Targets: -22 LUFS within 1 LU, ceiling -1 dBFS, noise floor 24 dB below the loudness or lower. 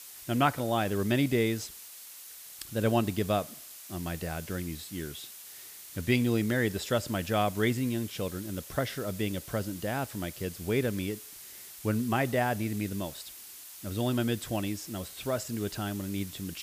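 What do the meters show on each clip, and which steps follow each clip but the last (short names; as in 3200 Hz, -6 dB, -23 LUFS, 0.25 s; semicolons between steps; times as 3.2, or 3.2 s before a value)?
noise floor -47 dBFS; noise floor target -56 dBFS; loudness -31.5 LUFS; peak -12.0 dBFS; loudness target -22.0 LUFS
-> noise print and reduce 9 dB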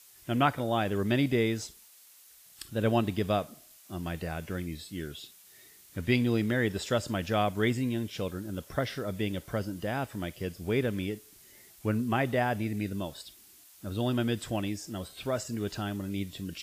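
noise floor -56 dBFS; loudness -31.5 LUFS; peak -12.0 dBFS; loudness target -22.0 LUFS
-> gain +9.5 dB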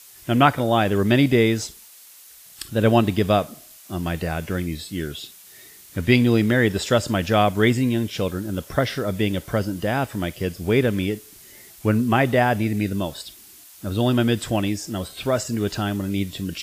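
loudness -22.0 LUFS; peak -2.5 dBFS; noise floor -47 dBFS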